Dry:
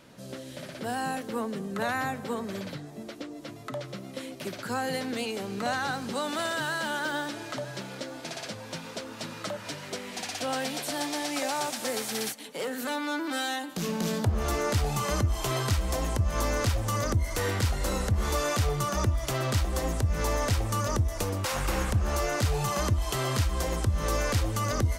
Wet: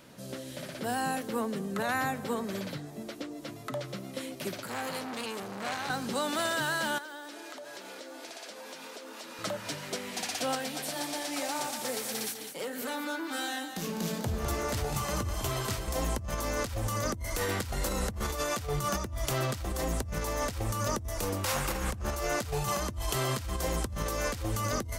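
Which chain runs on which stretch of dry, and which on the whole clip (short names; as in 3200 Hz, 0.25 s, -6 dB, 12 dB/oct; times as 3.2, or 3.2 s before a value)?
4.6–5.9 bell 1700 Hz -5.5 dB 0.42 oct + core saturation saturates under 2500 Hz
6.98–9.39 HPF 280 Hz 24 dB/oct + compressor 10:1, threshold -40 dBFS
10.55–15.88 flange 1.8 Hz, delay 0.7 ms, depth 7.6 ms, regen -61% + echo 0.203 s -8.5 dB
whole clip: high shelf 11000 Hz +8 dB; notches 50/100 Hz; negative-ratio compressor -29 dBFS, ratio -0.5; gain -1.5 dB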